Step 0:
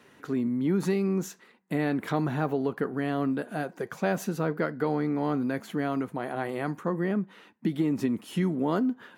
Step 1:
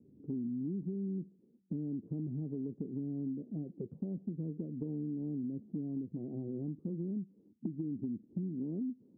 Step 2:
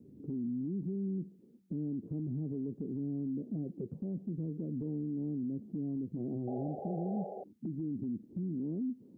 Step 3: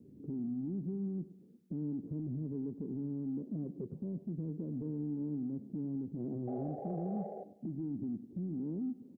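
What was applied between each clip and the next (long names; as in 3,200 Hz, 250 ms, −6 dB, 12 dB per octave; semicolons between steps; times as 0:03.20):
inverse Chebyshev low-pass filter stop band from 1,900 Hz, stop band 80 dB; downward compressor, threshold −37 dBFS, peak gain reduction 13 dB; level +1.5 dB
brickwall limiter −36.5 dBFS, peak gain reduction 10 dB; sound drawn into the spectrogram noise, 0:06.47–0:07.44, 370–830 Hz −49 dBFS; level +6 dB
in parallel at −12 dB: soft clipping −35 dBFS, distortion −15 dB; on the sum: repeating echo 101 ms, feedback 46%, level −16 dB; level −3 dB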